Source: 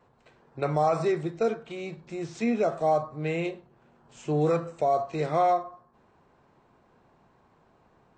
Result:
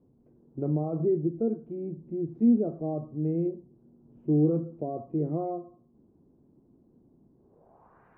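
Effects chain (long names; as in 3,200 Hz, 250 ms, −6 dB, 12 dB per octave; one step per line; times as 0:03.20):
gate on every frequency bin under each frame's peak −30 dB strong
low-pass filter sweep 290 Hz → 1,800 Hz, 0:07.35–0:08.07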